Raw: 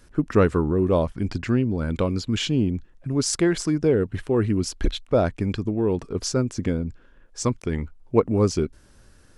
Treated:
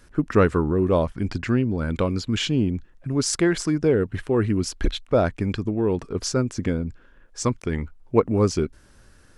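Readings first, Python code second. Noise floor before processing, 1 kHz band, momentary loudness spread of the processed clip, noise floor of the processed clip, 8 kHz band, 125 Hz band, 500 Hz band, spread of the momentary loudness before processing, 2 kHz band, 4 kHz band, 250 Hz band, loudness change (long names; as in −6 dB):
−53 dBFS, +1.5 dB, 8 LU, −53 dBFS, 0.0 dB, 0.0 dB, +0.5 dB, 8 LU, +2.5 dB, +0.5 dB, 0.0 dB, +0.5 dB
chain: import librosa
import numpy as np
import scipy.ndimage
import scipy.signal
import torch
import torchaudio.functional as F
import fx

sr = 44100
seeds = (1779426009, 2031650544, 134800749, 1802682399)

y = fx.peak_eq(x, sr, hz=1600.0, db=3.0, octaves=1.4)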